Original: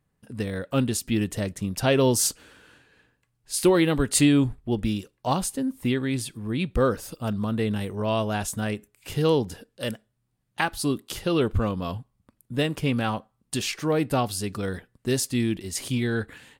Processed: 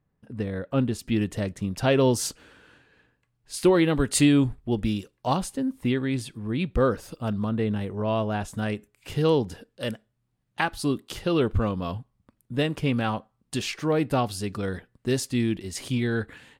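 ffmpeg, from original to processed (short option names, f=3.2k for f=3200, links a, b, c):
-af "asetnsamples=n=441:p=0,asendcmd='0.99 lowpass f 3700;3.98 lowpass f 8100;5.37 lowpass f 3800;7.49 lowpass f 1900;8.54 lowpass f 4800',lowpass=f=1.5k:p=1"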